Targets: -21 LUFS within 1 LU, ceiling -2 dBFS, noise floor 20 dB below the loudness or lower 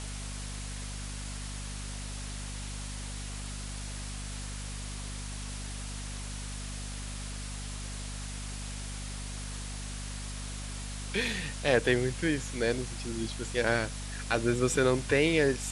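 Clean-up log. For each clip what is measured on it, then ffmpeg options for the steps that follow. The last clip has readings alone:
hum 50 Hz; harmonics up to 250 Hz; hum level -37 dBFS; noise floor -39 dBFS; noise floor target -54 dBFS; loudness -33.5 LUFS; peak -10.5 dBFS; loudness target -21.0 LUFS
-> -af "bandreject=f=50:t=h:w=4,bandreject=f=100:t=h:w=4,bandreject=f=150:t=h:w=4,bandreject=f=200:t=h:w=4,bandreject=f=250:t=h:w=4"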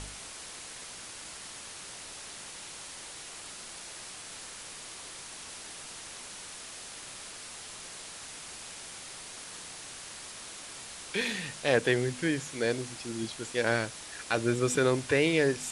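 hum none; noise floor -45 dBFS; noise floor target -54 dBFS
-> -af "afftdn=nr=9:nf=-45"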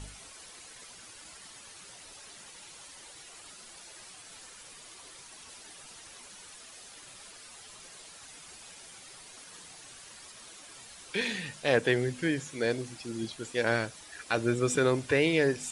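noise floor -50 dBFS; loudness -29.5 LUFS; peak -11.0 dBFS; loudness target -21.0 LUFS
-> -af "volume=8.5dB"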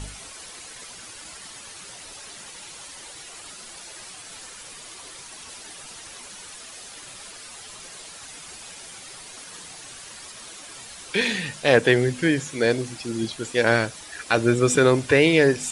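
loudness -21.0 LUFS; peak -2.5 dBFS; noise floor -42 dBFS

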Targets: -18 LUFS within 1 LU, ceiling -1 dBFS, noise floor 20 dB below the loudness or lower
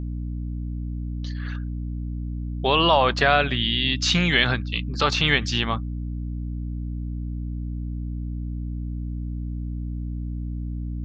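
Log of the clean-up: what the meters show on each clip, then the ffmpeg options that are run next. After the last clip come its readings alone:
hum 60 Hz; harmonics up to 300 Hz; hum level -27 dBFS; loudness -25.0 LUFS; peak -4.5 dBFS; loudness target -18.0 LUFS
-> -af "bandreject=f=60:t=h:w=4,bandreject=f=120:t=h:w=4,bandreject=f=180:t=h:w=4,bandreject=f=240:t=h:w=4,bandreject=f=300:t=h:w=4"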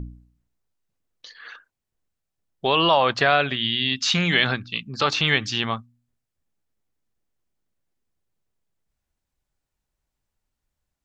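hum none; loudness -21.0 LUFS; peak -4.5 dBFS; loudness target -18.0 LUFS
-> -af "volume=3dB"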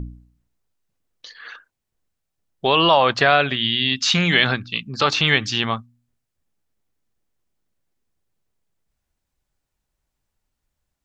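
loudness -18.0 LUFS; peak -1.5 dBFS; noise floor -80 dBFS

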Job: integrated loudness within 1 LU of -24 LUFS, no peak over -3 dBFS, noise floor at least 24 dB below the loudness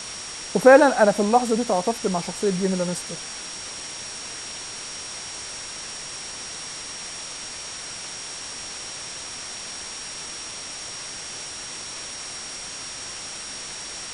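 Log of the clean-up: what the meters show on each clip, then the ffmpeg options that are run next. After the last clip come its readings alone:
steady tone 5600 Hz; tone level -37 dBFS; noise floor -35 dBFS; noise floor target -50 dBFS; loudness -25.5 LUFS; peak -1.5 dBFS; loudness target -24.0 LUFS
-> -af "bandreject=f=5.6k:w=30"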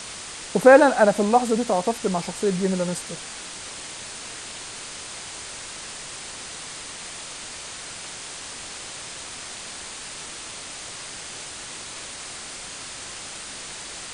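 steady tone none; noise floor -37 dBFS; noise floor target -50 dBFS
-> -af "afftdn=nr=13:nf=-37"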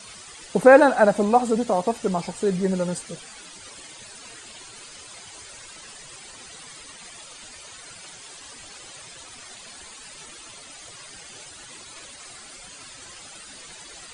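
noise floor -44 dBFS; loudness -19.5 LUFS; peak -2.0 dBFS; loudness target -24.0 LUFS
-> -af "volume=-4.5dB"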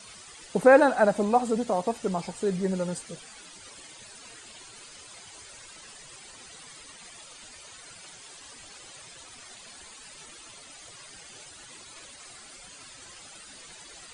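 loudness -24.0 LUFS; peak -6.5 dBFS; noise floor -48 dBFS

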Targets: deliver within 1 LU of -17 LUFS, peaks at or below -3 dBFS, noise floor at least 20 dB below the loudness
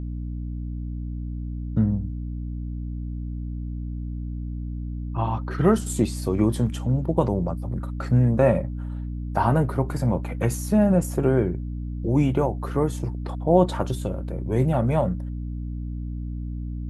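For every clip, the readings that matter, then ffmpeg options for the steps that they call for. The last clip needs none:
hum 60 Hz; harmonics up to 300 Hz; hum level -28 dBFS; loudness -25.5 LUFS; peak -5.0 dBFS; loudness target -17.0 LUFS
-> -af "bandreject=f=60:t=h:w=4,bandreject=f=120:t=h:w=4,bandreject=f=180:t=h:w=4,bandreject=f=240:t=h:w=4,bandreject=f=300:t=h:w=4"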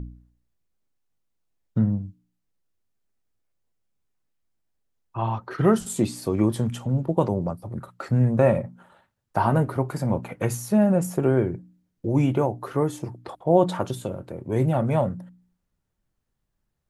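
hum none; loudness -24.0 LUFS; peak -6.0 dBFS; loudness target -17.0 LUFS
-> -af "volume=7dB,alimiter=limit=-3dB:level=0:latency=1"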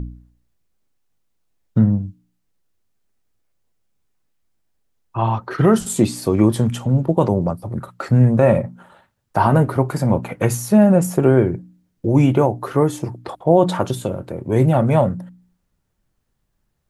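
loudness -17.5 LUFS; peak -3.0 dBFS; noise floor -71 dBFS

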